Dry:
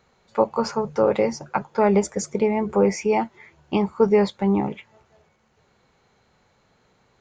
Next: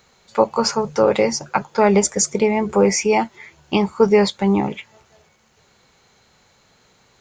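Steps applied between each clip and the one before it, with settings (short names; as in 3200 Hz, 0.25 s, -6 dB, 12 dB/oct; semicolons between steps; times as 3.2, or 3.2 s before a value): high shelf 2800 Hz +12 dB; gain +3 dB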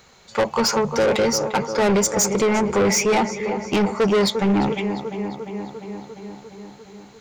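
darkening echo 0.349 s, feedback 70%, low-pass 4600 Hz, level -14 dB; soft clip -19 dBFS, distortion -7 dB; gain +4.5 dB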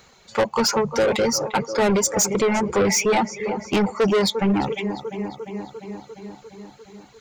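reverb removal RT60 0.74 s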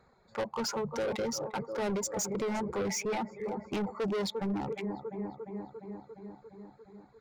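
Wiener smoothing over 15 samples; limiter -19.5 dBFS, peak gain reduction 6.5 dB; gain -8.5 dB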